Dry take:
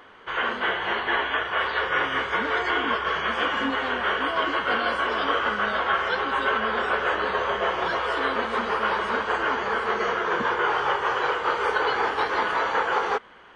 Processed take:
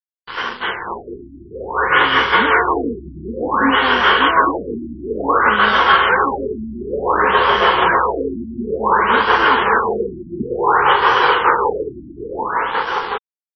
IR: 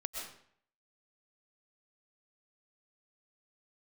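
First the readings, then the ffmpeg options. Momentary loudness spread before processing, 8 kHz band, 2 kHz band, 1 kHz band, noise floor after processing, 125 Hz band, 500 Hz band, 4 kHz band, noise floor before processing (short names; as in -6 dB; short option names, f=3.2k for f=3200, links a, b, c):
2 LU, n/a, +7.0 dB, +9.0 dB, -41 dBFS, +11.0 dB, +7.5 dB, +8.0 dB, -32 dBFS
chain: -af "dynaudnorm=f=140:g=21:m=11.5dB,aeval=exprs='sgn(val(0))*max(abs(val(0))-0.0211,0)':c=same,acontrast=39,equalizer=f=630:t=o:w=0.33:g=-8,equalizer=f=1k:t=o:w=0.33:g=4,equalizer=f=3.15k:t=o:w=0.33:g=4,afftfilt=real='re*lt(b*sr/1024,340*pow(6000/340,0.5+0.5*sin(2*PI*0.56*pts/sr)))':imag='im*lt(b*sr/1024,340*pow(6000/340,0.5+0.5*sin(2*PI*0.56*pts/sr)))':win_size=1024:overlap=0.75,volume=-1.5dB"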